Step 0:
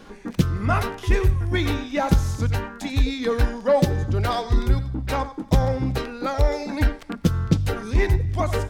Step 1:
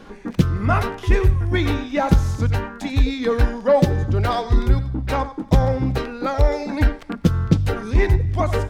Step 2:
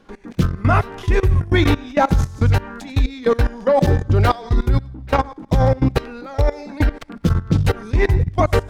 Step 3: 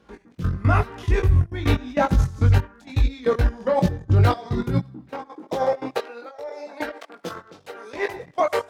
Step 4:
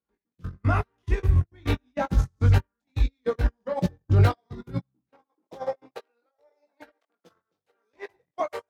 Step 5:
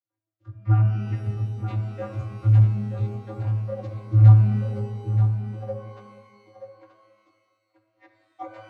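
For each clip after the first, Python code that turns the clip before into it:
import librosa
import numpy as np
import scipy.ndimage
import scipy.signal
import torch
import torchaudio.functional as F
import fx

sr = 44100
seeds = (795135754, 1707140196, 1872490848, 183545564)

y1 = fx.high_shelf(x, sr, hz=4100.0, db=-6.5)
y1 = y1 * librosa.db_to_amplitude(3.0)
y2 = fx.level_steps(y1, sr, step_db=20)
y2 = y2 * librosa.db_to_amplitude(7.0)
y3 = fx.step_gate(y2, sr, bpm=136, pattern='xx..xxxxxxx', floor_db=-12.0, edge_ms=4.5)
y3 = fx.filter_sweep_highpass(y3, sr, from_hz=66.0, to_hz=540.0, start_s=3.94, end_s=5.82, q=1.5)
y3 = fx.chorus_voices(y3, sr, voices=6, hz=0.91, base_ms=20, depth_ms=3.7, mix_pct=40)
y3 = y3 * librosa.db_to_amplitude(-1.5)
y4 = fx.upward_expand(y3, sr, threshold_db=-36.0, expansion=2.5)
y5 = fx.vocoder(y4, sr, bands=32, carrier='square', carrier_hz=108.0)
y5 = y5 + 10.0 ** (-8.5 / 20.0) * np.pad(y5, (int(930 * sr / 1000.0), 0))[:len(y5)]
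y5 = fx.rev_shimmer(y5, sr, seeds[0], rt60_s=1.6, semitones=12, shimmer_db=-8, drr_db=6.0)
y5 = y5 * librosa.db_to_amplitude(8.0)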